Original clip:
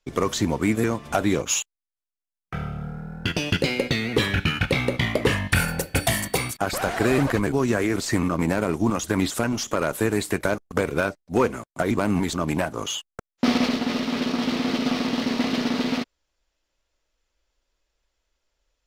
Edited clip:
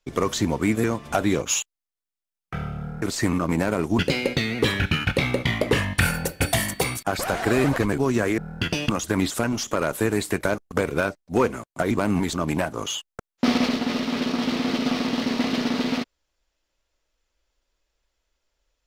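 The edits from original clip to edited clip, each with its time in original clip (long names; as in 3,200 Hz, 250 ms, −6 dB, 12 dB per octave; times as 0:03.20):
0:03.02–0:03.53: swap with 0:07.92–0:08.89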